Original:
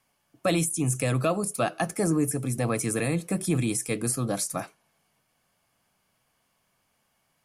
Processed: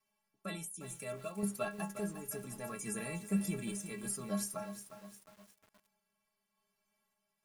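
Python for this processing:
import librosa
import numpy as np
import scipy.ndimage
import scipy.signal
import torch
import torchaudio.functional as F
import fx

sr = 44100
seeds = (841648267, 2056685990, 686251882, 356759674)

y = fx.stiff_resonator(x, sr, f0_hz=200.0, decay_s=0.24, stiffness=0.008)
y = fx.tremolo_random(y, sr, seeds[0], hz=3.5, depth_pct=55)
y = fx.echo_crushed(y, sr, ms=356, feedback_pct=55, bits=9, wet_db=-10.0)
y = y * librosa.db_to_amplitude(2.0)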